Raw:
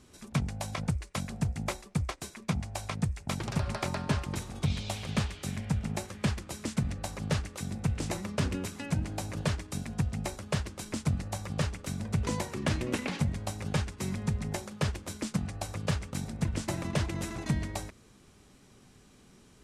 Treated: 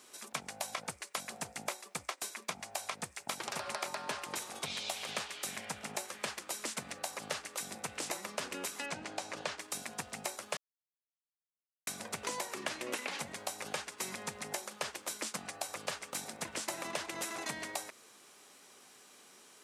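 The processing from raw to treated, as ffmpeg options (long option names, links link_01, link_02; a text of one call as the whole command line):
ffmpeg -i in.wav -filter_complex "[0:a]asettb=1/sr,asplit=3[link_01][link_02][link_03];[link_01]atrim=end=8.864[link_04];[link_02]atrim=start=8.86:end=9.58,asetpts=PTS-STARTPTS,afade=type=in:duration=0.004:curve=qsin,afade=type=out:start_time=0.716:duration=0.004:curve=qsin,lowpass=6300[link_05];[link_03]atrim=start=9.576[link_06];[link_04][link_05]acrossfade=duration=0.004:curve1=hsin:curve2=qsin[link_07];[link_07][link_06]acrossfade=duration=0.004:curve1=qsin:curve2=hsin,asplit=3[link_08][link_09][link_10];[link_08]atrim=end=10.57,asetpts=PTS-STARTPTS,afade=type=out:start_time=10.566:duration=0.004:curve=hsin[link_11];[link_09]atrim=start=10.57:end=11.87,asetpts=PTS-STARTPTS,volume=0[link_12];[link_10]atrim=start=11.87,asetpts=PTS-STARTPTS,afade=type=in:duration=0.004:curve=hsin[link_13];[link_11][link_12][link_13]concat=n=3:v=0:a=1,highpass=560,highshelf=frequency=11000:gain=9.5,acompressor=threshold=-39dB:ratio=4,volume=4dB" out.wav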